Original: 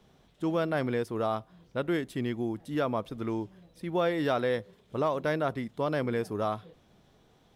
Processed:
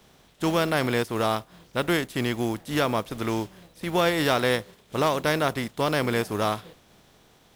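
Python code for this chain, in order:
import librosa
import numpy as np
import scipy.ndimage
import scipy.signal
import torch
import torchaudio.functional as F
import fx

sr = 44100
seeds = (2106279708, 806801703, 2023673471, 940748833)

y = fx.spec_flatten(x, sr, power=0.66)
y = fx.mod_noise(y, sr, seeds[0], snr_db=29)
y = y * 10.0 ** (5.0 / 20.0)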